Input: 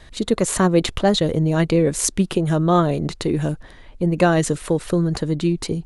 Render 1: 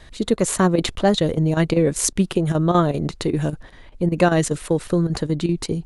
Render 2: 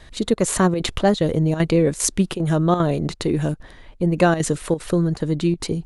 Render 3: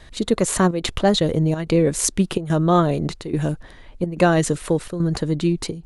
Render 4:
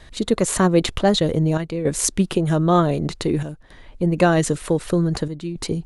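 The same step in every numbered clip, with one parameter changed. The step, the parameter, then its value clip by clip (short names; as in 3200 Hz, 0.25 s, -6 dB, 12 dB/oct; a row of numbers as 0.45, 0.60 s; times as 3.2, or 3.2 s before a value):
chopper, rate: 5.1, 2.5, 1.2, 0.54 Hz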